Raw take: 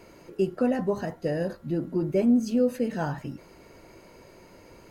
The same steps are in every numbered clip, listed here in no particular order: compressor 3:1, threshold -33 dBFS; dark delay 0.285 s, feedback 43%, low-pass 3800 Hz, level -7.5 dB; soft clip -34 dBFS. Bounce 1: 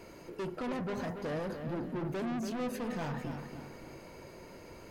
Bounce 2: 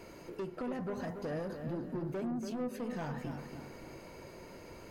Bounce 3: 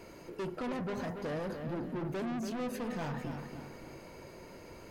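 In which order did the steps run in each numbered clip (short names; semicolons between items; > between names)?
soft clip > compressor > dark delay; compressor > soft clip > dark delay; soft clip > dark delay > compressor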